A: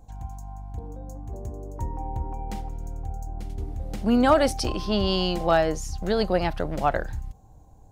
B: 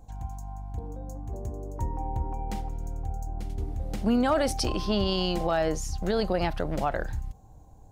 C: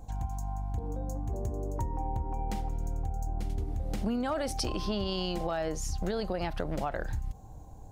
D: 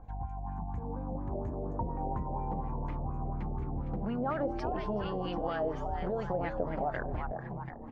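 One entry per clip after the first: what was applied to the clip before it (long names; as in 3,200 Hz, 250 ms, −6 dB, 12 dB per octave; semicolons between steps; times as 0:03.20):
brickwall limiter −16.5 dBFS, peak gain reduction 7 dB
downward compressor 6 to 1, threshold −33 dBFS, peak gain reduction 12 dB; level +4 dB
echo with shifted repeats 368 ms, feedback 46%, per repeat +98 Hz, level −5.5 dB; auto-filter low-pass sine 4.2 Hz 610–2,200 Hz; level −4.5 dB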